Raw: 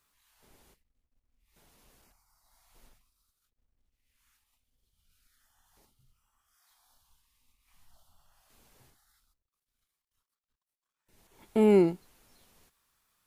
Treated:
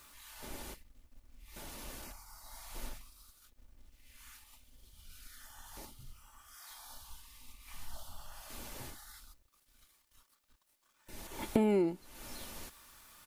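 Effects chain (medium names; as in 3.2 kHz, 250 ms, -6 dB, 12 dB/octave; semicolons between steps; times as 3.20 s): comb 3.4 ms, depth 34%; compression 8:1, threshold -44 dBFS, peak gain reduction 24 dB; trim +16 dB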